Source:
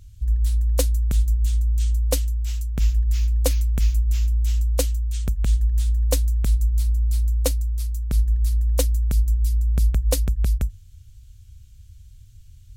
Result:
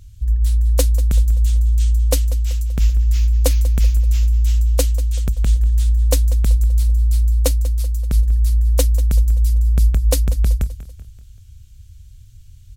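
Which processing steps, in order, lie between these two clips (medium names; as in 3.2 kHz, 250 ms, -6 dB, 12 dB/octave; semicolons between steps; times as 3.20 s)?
feedback delay 192 ms, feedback 48%, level -16 dB; trim +3.5 dB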